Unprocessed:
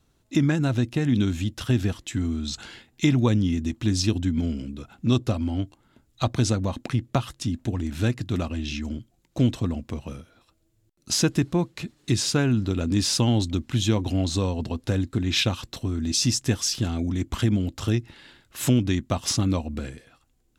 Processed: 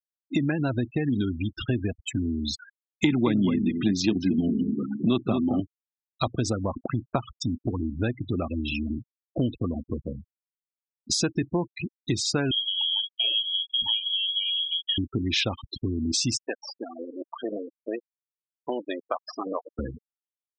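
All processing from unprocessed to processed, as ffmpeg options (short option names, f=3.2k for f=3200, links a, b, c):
-filter_complex "[0:a]asettb=1/sr,asplit=3[a][b][c];[a]atrim=end=3.044[d];[b]atrim=start=3.04:end=5.6,asetpts=PTS-STARTPTS,afade=t=in:d=0.004:c=qsin,afade=t=out:st=2.556:d=0.004:c=qsin,highpass=f=120:w=0.5412,highpass=f=120:w=1.3066,equalizer=f=130:t=q:w=4:g=-3,equalizer=f=190:t=q:w=4:g=8,equalizer=f=360:t=q:w=4:g=3,equalizer=f=530:t=q:w=4:g=-6,equalizer=f=5.2k:t=q:w=4:g=-6,lowpass=f=6.6k:w=0.5412,lowpass=f=6.6k:w=1.3066,acontrast=51,asplit=2[e][f];[f]adelay=222,lowpass=f=3.9k:p=1,volume=-8dB,asplit=2[g][h];[h]adelay=222,lowpass=f=3.9k:p=1,volume=0.16,asplit=2[i][j];[j]adelay=222,lowpass=f=3.9k:p=1,volume=0.16[k];[e][g][i][k]amix=inputs=4:normalize=0,atrim=end_sample=112896[l];[c]atrim=start=5.596[m];[d][l]acrossfade=d=0.004:c1=hsin:c2=qsin[n];[n][m]acrossfade=d=0.004:c1=qsin:c2=hsin,asettb=1/sr,asplit=3[o][p][q];[o]atrim=end=12.514[r];[p]atrim=start=12.51:end=14.98,asetpts=PTS-STARTPTS,afade=t=in:d=0.004:c=qsin,afade=t=out:st=2.466:d=0.004:c=qsin,equalizer=f=450:w=0.3:g=-10,asplit=2[s][t];[t]adelay=36,volume=-4.5dB[u];[s][u]amix=inputs=2:normalize=0,atrim=end_sample=108927,lowpass=f=2.9k:t=q:w=0.5098,lowpass=f=2.9k:t=q:w=0.6013,lowpass=f=2.9k:t=q:w=0.9,lowpass=f=2.9k:t=q:w=2.563,afreqshift=-3400[v];[q]atrim=start=14.976[w];[r][v]acrossfade=d=0.004:c1=hsin:c2=qsin[x];[x][w]acrossfade=d=0.004:c1=qsin:c2=hsin,asettb=1/sr,asplit=3[y][z][aa];[y]atrim=end=16.374[ab];[z]atrim=start=16.37:end=19.79,asetpts=PTS-STARTPTS,afade=t=in:d=0.004:c=qsin,afade=t=out:st=3.416:d=0.004:c=qsin,aeval=exprs='max(val(0),0)':c=same,highpass=500,lowpass=3.8k[ac];[aa]atrim=start=19.786[ad];[ab][ac]acrossfade=d=0.004:c1=hsin:c2=qsin[ae];[ae][ad]acrossfade=d=0.004:c1=qsin:c2=hsin,afftfilt=real='re*gte(hypot(re,im),0.0447)':imag='im*gte(hypot(re,im),0.0447)':win_size=1024:overlap=0.75,bass=f=250:g=-7,treble=f=4k:g=-4,acompressor=threshold=-34dB:ratio=2.5,volume=8dB"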